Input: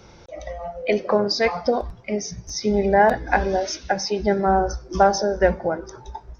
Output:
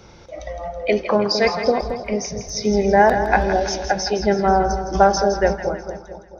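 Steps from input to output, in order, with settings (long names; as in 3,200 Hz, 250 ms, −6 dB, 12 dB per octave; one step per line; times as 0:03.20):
fade-out on the ending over 1.24 s
echo with a time of its own for lows and highs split 780 Hz, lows 223 ms, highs 163 ms, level −9 dB
level +2 dB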